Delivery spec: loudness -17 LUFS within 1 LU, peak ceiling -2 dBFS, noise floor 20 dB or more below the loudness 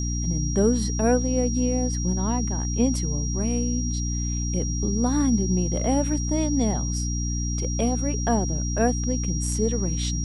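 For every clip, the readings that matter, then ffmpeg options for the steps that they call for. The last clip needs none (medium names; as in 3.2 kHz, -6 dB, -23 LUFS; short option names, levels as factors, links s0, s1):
hum 60 Hz; highest harmonic 300 Hz; hum level -24 dBFS; steady tone 5.7 kHz; tone level -32 dBFS; loudness -24.5 LUFS; peak level -8.5 dBFS; loudness target -17.0 LUFS
-> -af "bandreject=f=60:t=h:w=6,bandreject=f=120:t=h:w=6,bandreject=f=180:t=h:w=6,bandreject=f=240:t=h:w=6,bandreject=f=300:t=h:w=6"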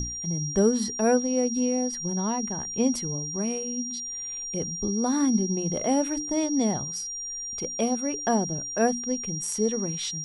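hum not found; steady tone 5.7 kHz; tone level -32 dBFS
-> -af "bandreject=f=5700:w=30"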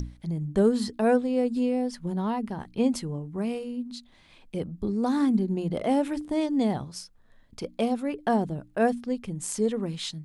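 steady tone not found; loudness -27.5 LUFS; peak level -11.0 dBFS; loudness target -17.0 LUFS
-> -af "volume=3.35,alimiter=limit=0.794:level=0:latency=1"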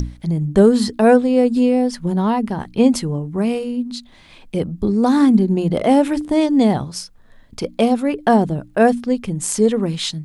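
loudness -17.0 LUFS; peak level -2.0 dBFS; noise floor -47 dBFS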